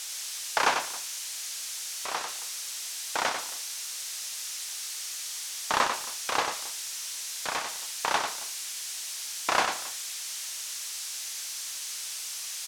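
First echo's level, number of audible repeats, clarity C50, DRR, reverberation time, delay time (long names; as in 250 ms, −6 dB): −6.0 dB, 2, no reverb audible, no reverb audible, no reverb audible, 95 ms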